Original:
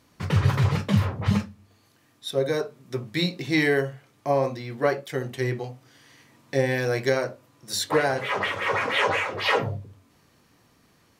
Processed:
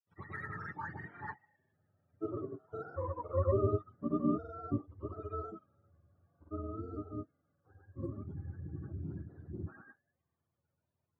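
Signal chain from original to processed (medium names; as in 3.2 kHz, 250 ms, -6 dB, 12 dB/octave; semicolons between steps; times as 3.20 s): spectrum inverted on a logarithmic axis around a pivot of 410 Hz; Doppler pass-by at 3.82 s, 16 m/s, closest 18 m; granulator, pitch spread up and down by 0 st; trim -6.5 dB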